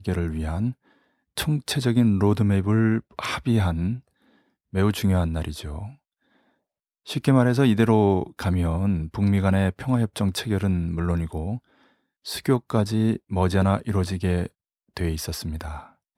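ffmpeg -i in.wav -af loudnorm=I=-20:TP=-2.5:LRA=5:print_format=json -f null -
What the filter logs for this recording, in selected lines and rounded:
"input_i" : "-24.0",
"input_tp" : "-4.5",
"input_lra" : "3.6",
"input_thresh" : "-34.8",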